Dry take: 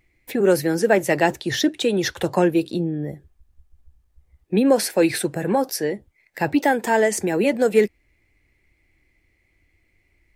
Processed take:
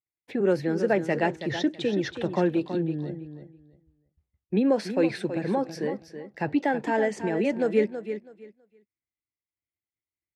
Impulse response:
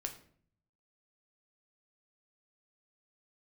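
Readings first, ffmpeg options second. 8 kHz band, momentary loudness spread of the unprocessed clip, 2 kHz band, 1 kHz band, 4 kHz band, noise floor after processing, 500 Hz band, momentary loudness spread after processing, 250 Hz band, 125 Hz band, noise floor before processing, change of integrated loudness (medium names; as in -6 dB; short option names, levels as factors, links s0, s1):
-19.0 dB, 8 LU, -7.5 dB, -7.0 dB, -10.5 dB, under -85 dBFS, -6.0 dB, 11 LU, -4.5 dB, -4.0 dB, -66 dBFS, -6.0 dB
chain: -filter_complex "[0:a]agate=range=0.0224:threshold=0.00562:ratio=3:detection=peak,highpass=120,lowpass=4000,lowshelf=f=250:g=7,asplit=2[s0][s1];[s1]aecho=0:1:326|652|978:0.316|0.0632|0.0126[s2];[s0][s2]amix=inputs=2:normalize=0,volume=0.398"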